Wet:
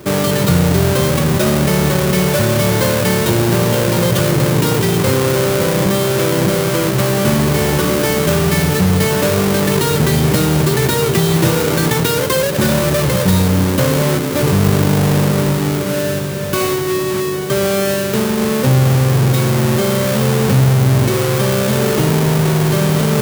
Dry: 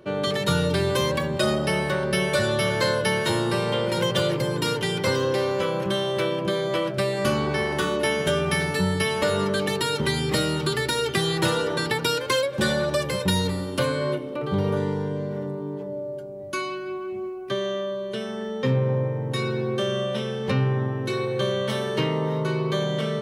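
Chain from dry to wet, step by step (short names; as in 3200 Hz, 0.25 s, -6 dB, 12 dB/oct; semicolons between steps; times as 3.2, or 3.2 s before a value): half-waves squared off; HPF 65 Hz; high shelf 7800 Hz +8.5 dB; in parallel at +1 dB: negative-ratio compressor -24 dBFS, ratio -1; on the sum: low shelf 280 Hz +8 dB; on a send: diffused feedback echo 1.285 s, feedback 72%, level -14 dB; on the sum: gain -2.5 dB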